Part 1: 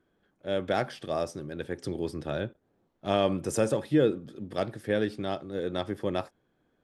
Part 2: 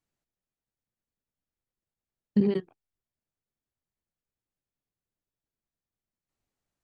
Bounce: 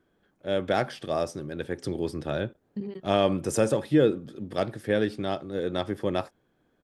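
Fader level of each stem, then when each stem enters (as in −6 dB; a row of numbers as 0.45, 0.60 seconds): +2.5, −11.5 decibels; 0.00, 0.40 seconds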